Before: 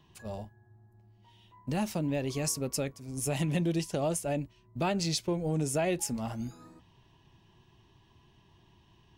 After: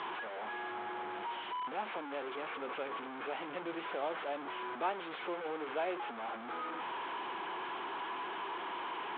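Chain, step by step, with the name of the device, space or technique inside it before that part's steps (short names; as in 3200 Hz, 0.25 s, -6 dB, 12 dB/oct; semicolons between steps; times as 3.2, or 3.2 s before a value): digital answering machine (BPF 400–3200 Hz; delta modulation 16 kbps, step -31.5 dBFS; speaker cabinet 480–3800 Hz, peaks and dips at 610 Hz -8 dB, 1900 Hz -8 dB, 2700 Hz -9 dB); gain +1.5 dB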